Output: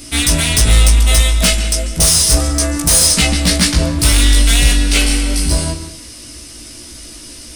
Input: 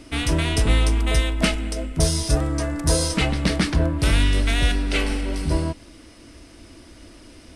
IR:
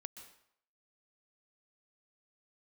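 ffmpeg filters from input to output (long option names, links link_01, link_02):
-filter_complex "[0:a]bass=frequency=250:gain=4,treble=frequency=4000:gain=5,crystalizer=i=4.5:c=0,asoftclip=type=hard:threshold=-8dB,acontrast=46,asplit=2[link_01][link_02];[1:a]atrim=start_sample=2205,lowpass=7700,adelay=17[link_03];[link_02][link_03]afir=irnorm=-1:irlink=0,volume=5dB[link_04];[link_01][link_04]amix=inputs=2:normalize=0,volume=-5dB"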